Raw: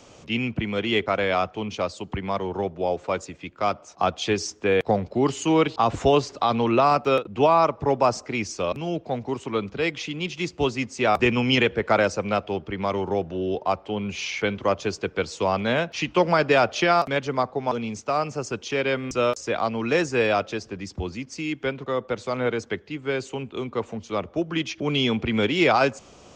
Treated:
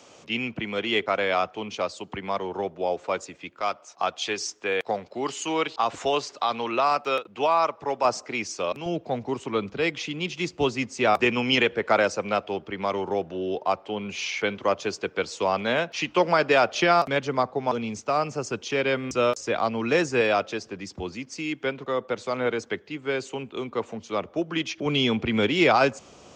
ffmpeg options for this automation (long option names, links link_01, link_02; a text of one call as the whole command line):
ffmpeg -i in.wav -af "asetnsamples=nb_out_samples=441:pad=0,asendcmd='3.61 highpass f 890;8.05 highpass f 400;8.86 highpass f 120;11.14 highpass f 290;16.75 highpass f 98;20.21 highpass f 220;24.86 highpass f 90',highpass=frequency=350:poles=1" out.wav